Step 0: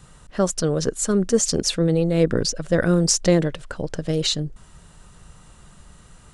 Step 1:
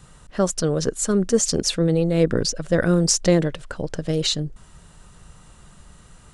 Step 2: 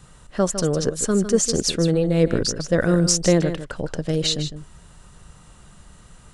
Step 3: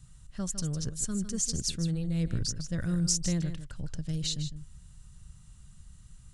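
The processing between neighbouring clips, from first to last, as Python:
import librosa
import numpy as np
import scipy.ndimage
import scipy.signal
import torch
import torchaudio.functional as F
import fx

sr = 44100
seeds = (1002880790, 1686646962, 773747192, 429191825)

y1 = x
y2 = y1 + 10.0 ** (-10.5 / 20.0) * np.pad(y1, (int(155 * sr / 1000.0), 0))[:len(y1)]
y3 = fx.curve_eq(y2, sr, hz=(120.0, 460.0, 6800.0), db=(0, -23, -5))
y3 = y3 * 10.0 ** (-2.5 / 20.0)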